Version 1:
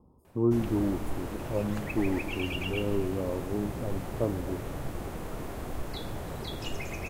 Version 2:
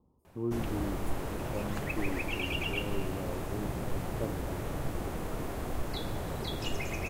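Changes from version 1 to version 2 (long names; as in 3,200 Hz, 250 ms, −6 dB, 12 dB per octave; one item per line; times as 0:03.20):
speech −8.5 dB
background: send +9.5 dB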